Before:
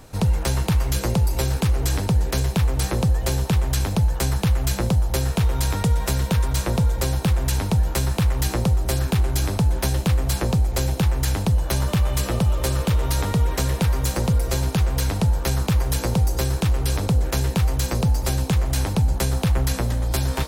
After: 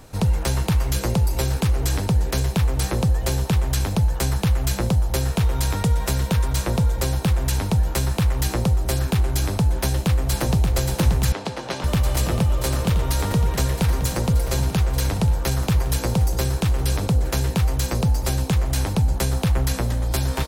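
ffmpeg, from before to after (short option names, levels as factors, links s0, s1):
-filter_complex "[0:a]asplit=2[s0][s1];[s1]afade=t=in:st=9.74:d=0.01,afade=t=out:st=10.63:d=0.01,aecho=0:1:580|1160|1740|2320|2900|3480|4060|4640|5220|5800|6380|6960:0.530884|0.451252|0.383564|0.326029|0.277125|0.235556|0.200223|0.170189|0.144661|0.122962|0.104518|0.0888399[s2];[s0][s2]amix=inputs=2:normalize=0,asettb=1/sr,asplit=3[s3][s4][s5];[s3]atrim=end=11.324[s6];[s4]atrim=start=11.32:end=11.84,asetpts=PTS-STARTPTS,afade=t=in:d=0.004:c=qsin,afade=t=out:st=0.516:d=0.004:c=qsin,highpass=290,lowpass=4800[s7];[s5]atrim=start=11.836[s8];[s6][s7]acrossfade=d=0.004:c1=hsin:c2=qsin[s9];[s9][s8]acrossfade=d=0.004:c1=qsin:c2=hsin"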